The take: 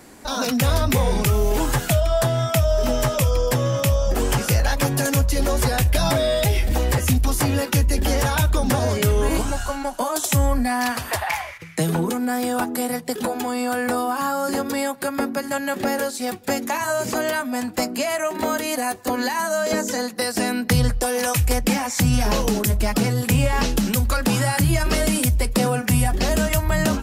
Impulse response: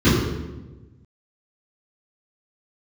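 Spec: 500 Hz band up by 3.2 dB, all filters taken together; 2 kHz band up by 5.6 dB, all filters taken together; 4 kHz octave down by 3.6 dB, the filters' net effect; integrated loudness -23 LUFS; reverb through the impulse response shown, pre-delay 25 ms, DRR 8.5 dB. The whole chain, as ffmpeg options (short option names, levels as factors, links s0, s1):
-filter_complex "[0:a]equalizer=f=500:t=o:g=3.5,equalizer=f=2000:t=o:g=8.5,equalizer=f=4000:t=o:g=-8,asplit=2[s0][s1];[1:a]atrim=start_sample=2205,adelay=25[s2];[s1][s2]afir=irnorm=-1:irlink=0,volume=0.0282[s3];[s0][s3]amix=inputs=2:normalize=0,volume=0.447"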